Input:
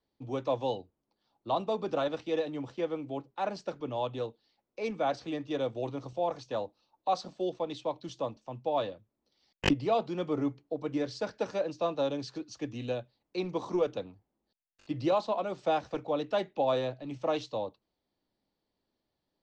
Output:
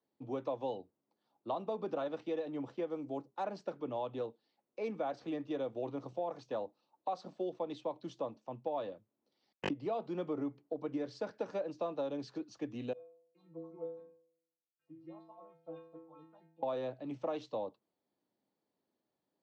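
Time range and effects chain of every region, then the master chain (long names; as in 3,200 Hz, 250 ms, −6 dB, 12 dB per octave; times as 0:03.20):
0:02.90–0:03.44: high shelf with overshoot 4,100 Hz +8 dB, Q 1.5 + one half of a high-frequency compander decoder only
0:12.93–0:16.63: all-pass phaser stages 4, 3.7 Hz, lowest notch 350–3,800 Hz + high-frequency loss of the air 270 metres + stiff-string resonator 160 Hz, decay 0.74 s, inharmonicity 0.008
whole clip: high-pass filter 170 Hz 12 dB per octave; high-shelf EQ 2,400 Hz −11 dB; downward compressor, threshold −32 dBFS; level −1 dB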